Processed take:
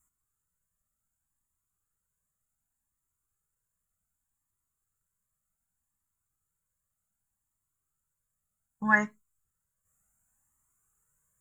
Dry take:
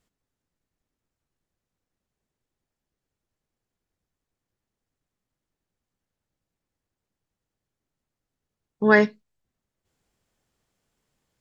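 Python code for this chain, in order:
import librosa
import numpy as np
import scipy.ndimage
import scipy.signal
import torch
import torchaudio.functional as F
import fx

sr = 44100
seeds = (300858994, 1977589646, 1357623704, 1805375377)

y = fx.curve_eq(x, sr, hz=(180.0, 350.0, 730.0, 1300.0, 4900.0, 7000.0), db=(0, -9, -5, 7, -24, 15))
y = fx.comb_cascade(y, sr, direction='rising', hz=0.66)
y = y * librosa.db_to_amplitude(-1.5)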